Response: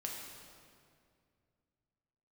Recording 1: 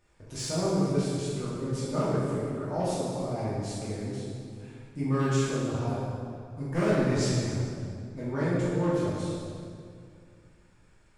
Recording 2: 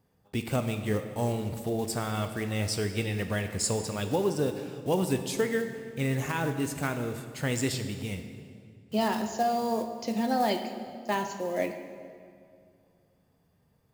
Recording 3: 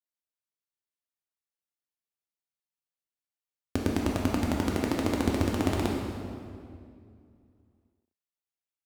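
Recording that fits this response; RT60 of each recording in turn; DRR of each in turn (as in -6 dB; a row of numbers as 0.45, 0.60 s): 3; 2.3, 2.3, 2.3 s; -10.5, 7.0, -1.5 dB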